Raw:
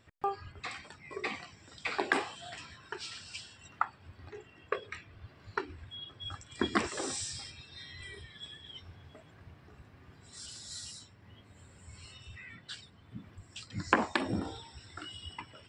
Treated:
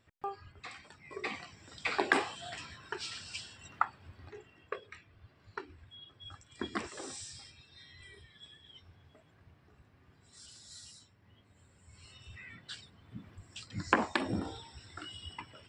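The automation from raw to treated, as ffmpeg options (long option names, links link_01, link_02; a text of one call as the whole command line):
ffmpeg -i in.wav -af "volume=8dB,afade=type=in:start_time=0.77:duration=1.07:silence=0.421697,afade=type=out:start_time=3.71:duration=1.14:silence=0.354813,afade=type=in:start_time=11.88:duration=0.52:silence=0.473151" out.wav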